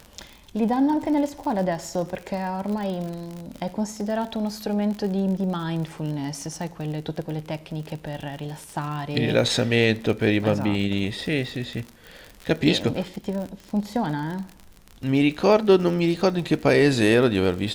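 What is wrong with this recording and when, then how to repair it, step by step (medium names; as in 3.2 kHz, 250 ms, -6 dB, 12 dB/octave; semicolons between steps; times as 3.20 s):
crackle 52 per s -30 dBFS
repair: de-click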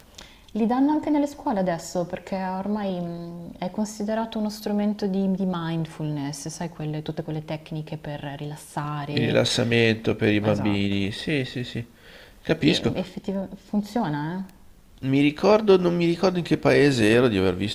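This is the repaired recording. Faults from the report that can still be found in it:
nothing left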